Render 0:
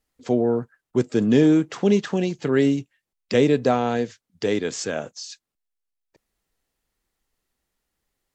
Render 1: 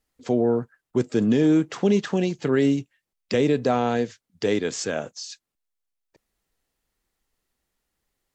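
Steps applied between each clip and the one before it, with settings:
brickwall limiter −11 dBFS, peak gain reduction 5.5 dB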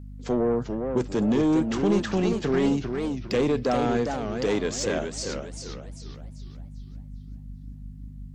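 mains hum 50 Hz, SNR 15 dB
soft clipping −17 dBFS, distortion −14 dB
feedback echo with a swinging delay time 400 ms, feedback 39%, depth 213 cents, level −6 dB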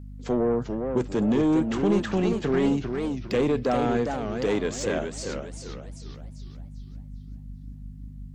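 dynamic equaliser 5,300 Hz, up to −6 dB, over −51 dBFS, Q 1.6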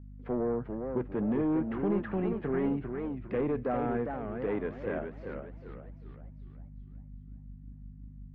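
low-pass filter 2,100 Hz 24 dB per octave
level −7 dB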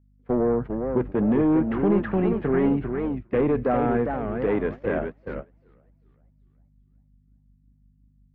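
noise gate −38 dBFS, range −21 dB
level +8.5 dB

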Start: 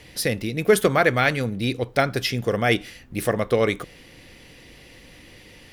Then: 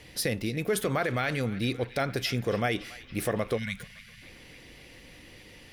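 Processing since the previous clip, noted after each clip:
brickwall limiter −14.5 dBFS, peak gain reduction 10.5 dB
time-frequency box erased 0:03.57–0:04.22, 250–1,400 Hz
feedback echo with a band-pass in the loop 281 ms, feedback 76%, band-pass 2,400 Hz, level −16 dB
level −3.5 dB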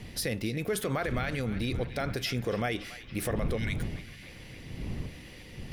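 wind on the microphone 150 Hz −37 dBFS
reversed playback
upward compression, threshold −42 dBFS
reversed playback
brickwall limiter −21.5 dBFS, peak gain reduction 6.5 dB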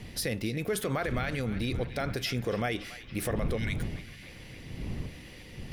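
no processing that can be heard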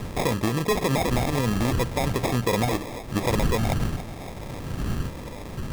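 in parallel at −1 dB: downward compressor, threshold −41 dBFS, peak gain reduction 14.5 dB
on the sum: decimation without filtering 30×
level +6 dB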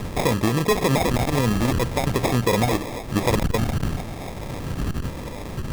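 saturating transformer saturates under 100 Hz
level +4 dB

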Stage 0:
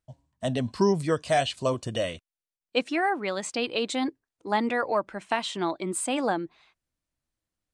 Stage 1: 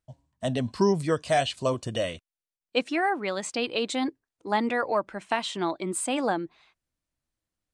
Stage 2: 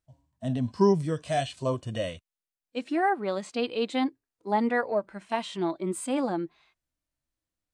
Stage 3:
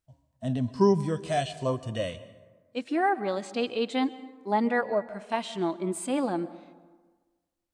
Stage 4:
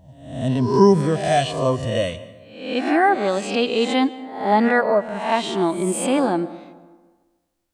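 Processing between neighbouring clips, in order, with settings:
no processing that can be heard
harmonic and percussive parts rebalanced percussive −14 dB; level +1.5 dB
dense smooth reverb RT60 1.4 s, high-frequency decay 0.5×, pre-delay 115 ms, DRR 16.5 dB
peak hold with a rise ahead of every peak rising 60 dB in 0.68 s; level +7.5 dB

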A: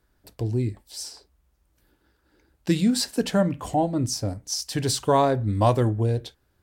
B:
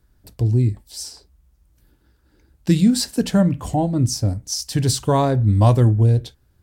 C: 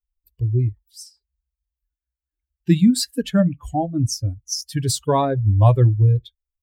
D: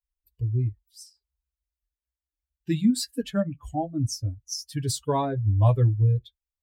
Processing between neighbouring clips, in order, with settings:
bass and treble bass +10 dB, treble +4 dB
spectral dynamics exaggerated over time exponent 2; level +2.5 dB
notch comb filter 180 Hz; level −5.5 dB

